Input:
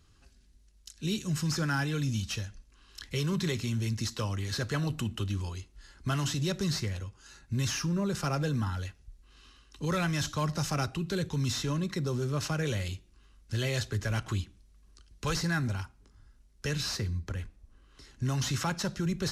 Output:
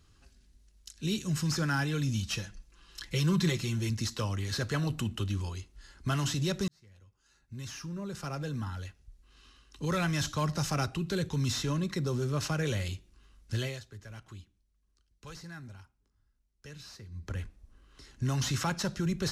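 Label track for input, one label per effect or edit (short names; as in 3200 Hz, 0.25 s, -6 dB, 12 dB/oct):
2.310000	3.900000	comb 5.9 ms
6.680000	10.140000	fade in
13.550000	17.350000	dip -15.5 dB, fades 0.25 s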